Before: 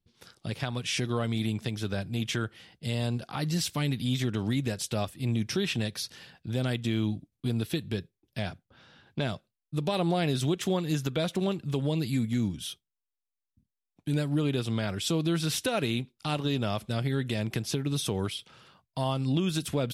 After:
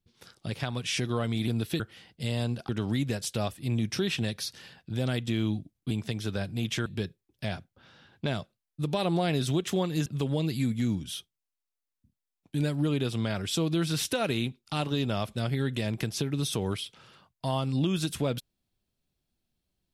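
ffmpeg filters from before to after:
-filter_complex "[0:a]asplit=7[s0][s1][s2][s3][s4][s5][s6];[s0]atrim=end=1.482[s7];[s1]atrim=start=7.478:end=7.802[s8];[s2]atrim=start=2.428:end=3.322[s9];[s3]atrim=start=4.258:end=7.482[s10];[s4]atrim=start=1.478:end=2.432[s11];[s5]atrim=start=7.798:end=11.002[s12];[s6]atrim=start=11.588[s13];[s7][s8]acrossfade=d=0.004:c1=hsin:c2=hsin[s14];[s14][s9]acrossfade=d=0.004:c1=hsin:c2=hsin[s15];[s15][s10]acrossfade=d=0.004:c1=hsin:c2=hsin[s16];[s16][s11]acrossfade=d=0.004:c1=hsin:c2=hsin[s17];[s17][s12]acrossfade=d=0.004:c1=hsin:c2=hsin[s18];[s18][s13]acrossfade=d=0.004:c1=hsin:c2=hsin"

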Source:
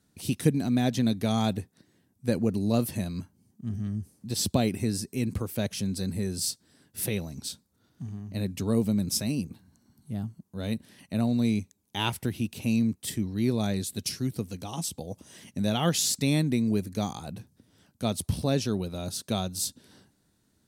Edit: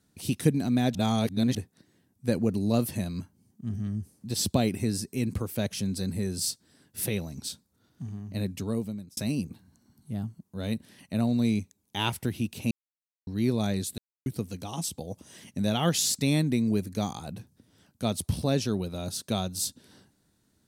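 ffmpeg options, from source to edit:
-filter_complex "[0:a]asplit=8[s0][s1][s2][s3][s4][s5][s6][s7];[s0]atrim=end=0.952[s8];[s1]atrim=start=0.948:end=1.552,asetpts=PTS-STARTPTS,areverse[s9];[s2]atrim=start=1.548:end=9.17,asetpts=PTS-STARTPTS,afade=t=out:st=6.872:d=0.75[s10];[s3]atrim=start=9.17:end=12.71,asetpts=PTS-STARTPTS,afade=t=in:d=0.004:c=hsin,afade=t=out:st=3.536:d=0.004:c=hsin[s11];[s4]atrim=start=12.71:end=13.27,asetpts=PTS-STARTPTS,volume=0[s12];[s5]atrim=start=13.27:end=13.98,asetpts=PTS-STARTPTS,afade=t=in:d=0.004:c=hsin,afade=t=out:st=0.706:d=0.004:c=hsin[s13];[s6]atrim=start=13.98:end=14.26,asetpts=PTS-STARTPTS,volume=0[s14];[s7]atrim=start=14.26,asetpts=PTS-STARTPTS,afade=t=in:d=0.004:c=hsin[s15];[s8][s9]acrossfade=d=0.004:c1=hsin:c2=hsin[s16];[s10][s11][s12][s13][s14][s15]concat=n=6:v=0:a=1[s17];[s16][s17]acrossfade=d=0.004:c1=hsin:c2=hsin"

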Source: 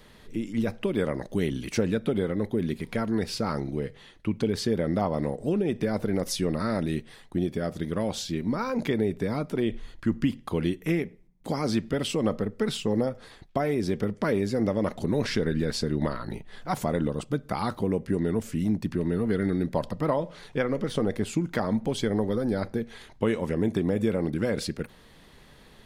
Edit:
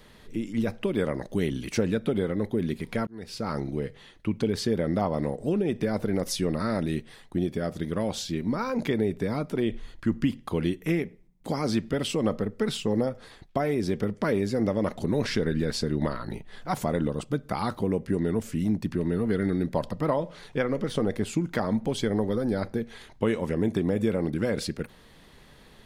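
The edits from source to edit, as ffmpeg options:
-filter_complex "[0:a]asplit=2[s0][s1];[s0]atrim=end=3.07,asetpts=PTS-STARTPTS,afade=t=out:st=3.066:d=0.004:c=hsin[s2];[s1]atrim=start=3.07,asetpts=PTS-STARTPTS,afade=t=in:d=0.52[s3];[s2][s3]concat=n=2:v=0:a=1"

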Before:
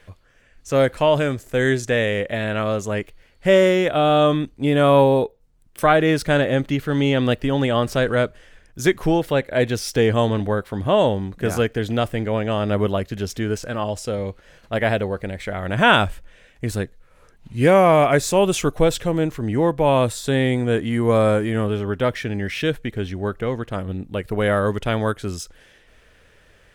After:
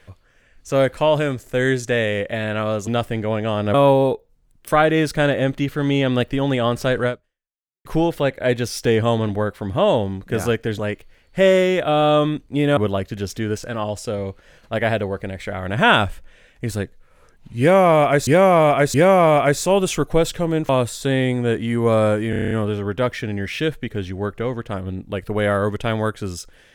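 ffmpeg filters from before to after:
-filter_complex "[0:a]asplit=16[s0][s1][s2][s3][s4][s5][s6][s7][s8][s9][s10][s11][s12][s13][s14][s15];[s0]atrim=end=2.872[s16];[s1]atrim=start=11.898:end=12.772[s17];[s2]atrim=start=4.848:end=8.96,asetpts=PTS-STARTPTS,afade=t=out:st=3.322:d=0.79:c=exp[s18];[s3]atrim=start=8.96:end=11.902,asetpts=PTS-STARTPTS,afade=t=in:d=0.004:c=hsin[s19];[s4]atrim=start=2.868:end=4.852[s20];[s5]atrim=start=12.768:end=18.272[s21];[s6]atrim=start=17.598:end=18.272[s22];[s7]atrim=start=17.598:end=19.352[s23];[s8]atrim=start=19.918:end=21.562[s24];[s9]atrim=start=21.528:end=21.562[s25];[s10]atrim=start=21.528:end=21.562[s26];[s11]atrim=start=21.528:end=21.562[s27];[s12]atrim=start=21.528:end=21.562[s28];[s13]atrim=start=21.528:end=21.562[s29];[s14]atrim=start=21.528:end=21.562[s30];[s15]atrim=start=21.528[s31];[s16][s17]acrossfade=d=0.004:c1=hsin:c2=hsin[s32];[s18][s19]concat=n=2:v=0:a=1[s33];[s32][s33]acrossfade=d=0.004:c1=hsin:c2=hsin[s34];[s34][s20]acrossfade=d=0.004:c1=hsin:c2=hsin[s35];[s35][s21]acrossfade=d=0.004:c1=hsin:c2=hsin[s36];[s36][s22]acrossfade=d=0.004:c1=hsin:c2=hsin[s37];[s37][s23]acrossfade=d=0.004:c1=hsin:c2=hsin[s38];[s38][s24]acrossfade=d=0.004:c1=hsin:c2=hsin[s39];[s39][s25]acrossfade=d=0.004:c1=hsin:c2=hsin[s40];[s40][s26]acrossfade=d=0.004:c1=hsin:c2=hsin[s41];[s41][s27]acrossfade=d=0.004:c1=hsin:c2=hsin[s42];[s42][s28]acrossfade=d=0.004:c1=hsin:c2=hsin[s43];[s43][s29]acrossfade=d=0.004:c1=hsin:c2=hsin[s44];[s44][s30]acrossfade=d=0.004:c1=hsin:c2=hsin[s45];[s45][s31]acrossfade=d=0.004:c1=hsin:c2=hsin"

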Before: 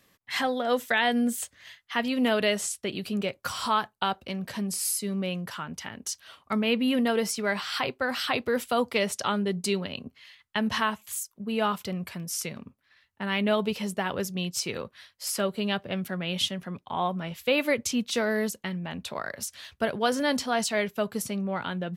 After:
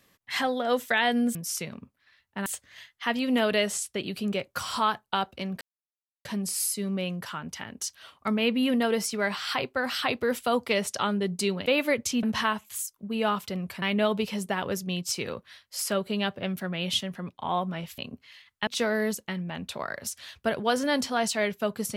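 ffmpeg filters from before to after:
-filter_complex "[0:a]asplit=9[s0][s1][s2][s3][s4][s5][s6][s7][s8];[s0]atrim=end=1.352[s9];[s1]atrim=start=12.188:end=13.302[s10];[s2]atrim=start=1.348:end=4.5,asetpts=PTS-STARTPTS,afade=t=out:st=3.148:d=0.004:c=hsin,apad=pad_dur=0.64[s11];[s3]atrim=start=4.5:end=9.912,asetpts=PTS-STARTPTS,afade=t=in:d=0.004:c=hsin[s12];[s4]atrim=start=17.458:end=18.032[s13];[s5]atrim=start=10.598:end=12.192[s14];[s6]atrim=start=13.298:end=17.462[s15];[s7]atrim=start=9.908:end=10.602[s16];[s8]atrim=start=18.028[s17];[s9][s10]acrossfade=d=0.004:c1=hsin:c2=hsin[s18];[s11][s12]concat=n=2:v=0:a=1[s19];[s18][s19]acrossfade=d=0.004:c1=hsin:c2=hsin[s20];[s20][s13]acrossfade=d=0.004:c1=hsin:c2=hsin[s21];[s21][s14]acrossfade=d=0.004:c1=hsin:c2=hsin[s22];[s22][s15]acrossfade=d=0.004:c1=hsin:c2=hsin[s23];[s23][s16]acrossfade=d=0.004:c1=hsin:c2=hsin[s24];[s24][s17]acrossfade=d=0.004:c1=hsin:c2=hsin"

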